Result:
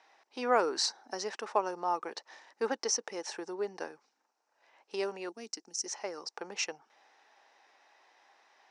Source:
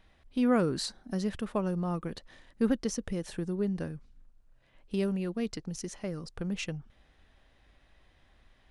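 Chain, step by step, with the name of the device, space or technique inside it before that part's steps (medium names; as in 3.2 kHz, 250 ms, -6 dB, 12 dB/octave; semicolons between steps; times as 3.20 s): 5.29–5.86 s: graphic EQ 125/250/500/1000/2000/4000/8000 Hz -11/+5/-11/-11/-7/-7/+5 dB; phone speaker on a table (cabinet simulation 420–7500 Hz, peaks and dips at 550 Hz -5 dB, 860 Hz +10 dB, 3.3 kHz -7 dB, 5.6 kHz +9 dB); trim +3.5 dB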